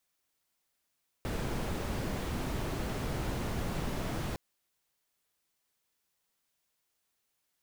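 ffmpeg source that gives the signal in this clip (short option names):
-f lavfi -i "anoisesrc=c=brown:a=0.0933:d=3.11:r=44100:seed=1"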